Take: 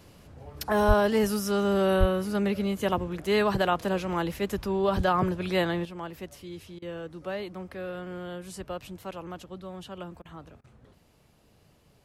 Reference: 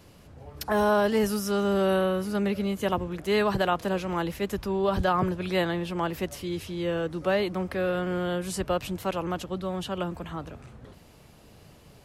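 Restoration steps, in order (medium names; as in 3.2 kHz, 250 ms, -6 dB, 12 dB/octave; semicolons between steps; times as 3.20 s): 0.87–0.99 s: high-pass 140 Hz 24 dB/octave; 1.99–2.11 s: high-pass 140 Hz 24 dB/octave; interpolate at 6.79/10.22/10.61 s, 30 ms; trim 0 dB, from 5.85 s +9 dB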